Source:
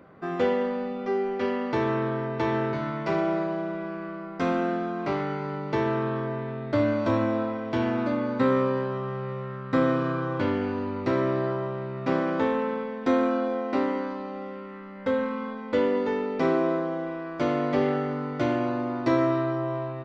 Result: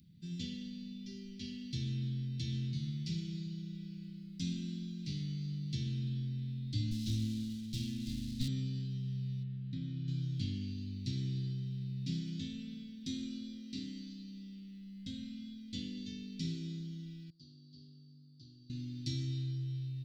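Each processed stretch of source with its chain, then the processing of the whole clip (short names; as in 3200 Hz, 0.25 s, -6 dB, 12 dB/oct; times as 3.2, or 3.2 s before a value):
6.91–8.48 minimum comb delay 9.1 ms + bell 220 Hz +3 dB 0.31 oct
9.43–10.08 LPF 2800 Hz + compressor 1.5:1, threshold -32 dBFS
17.3–18.7 double band-pass 2100 Hz, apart 2.3 oct + tilt -4.5 dB/oct
whole clip: Chebyshev band-stop 180–3800 Hz, order 3; high shelf 3700 Hz +8 dB; gain -1.5 dB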